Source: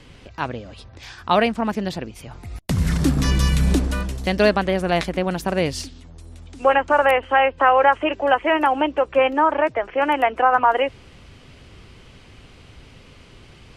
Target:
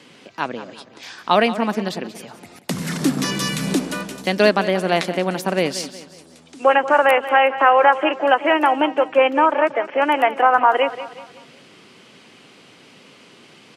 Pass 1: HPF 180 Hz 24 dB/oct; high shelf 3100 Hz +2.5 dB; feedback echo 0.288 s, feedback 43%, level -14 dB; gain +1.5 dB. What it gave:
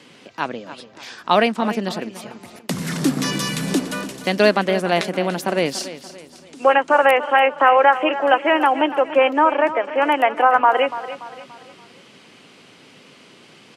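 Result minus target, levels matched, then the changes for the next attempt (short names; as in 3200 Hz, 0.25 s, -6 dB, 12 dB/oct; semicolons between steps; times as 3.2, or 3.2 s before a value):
echo 0.105 s late
change: feedback echo 0.183 s, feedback 43%, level -14 dB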